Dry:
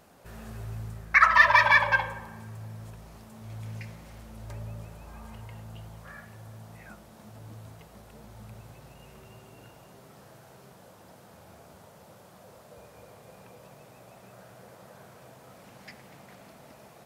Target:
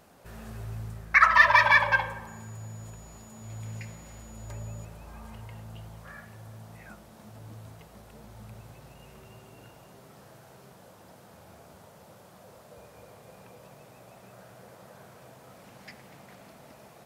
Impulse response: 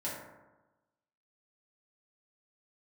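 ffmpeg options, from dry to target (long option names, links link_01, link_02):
-filter_complex "[0:a]asettb=1/sr,asplit=3[link_01][link_02][link_03];[link_01]atrim=end=2.274[link_04];[link_02]atrim=start=2.27:end=4.85,asetpts=PTS-STARTPTS,afade=type=in:duration=0.004:curve=qsin,afade=type=out:start_time=2.576:duration=0.004:curve=qsin,aeval=exprs='val(0)+0.002*sin(2*PI*6900*n/s)':channel_layout=same[link_05];[link_03]atrim=start=4.846[link_06];[link_04][link_05]acrossfade=duration=0.004:curve1=hsin:curve2=qsin[link_07];[link_07][link_06]acrossfade=duration=0.004:curve1=qsin:curve2=hsin"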